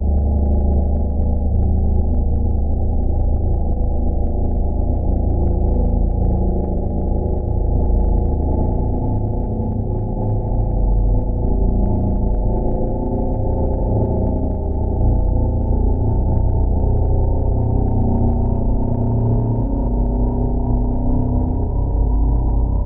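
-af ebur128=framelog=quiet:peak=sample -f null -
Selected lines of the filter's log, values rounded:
Integrated loudness:
  I:         -19.7 LUFS
  Threshold: -29.7 LUFS
Loudness range:
  LRA:         1.7 LU
  Threshold: -39.8 LUFS
  LRA low:   -20.5 LUFS
  LRA high:  -18.8 LUFS
Sample peak:
  Peak:       -4.9 dBFS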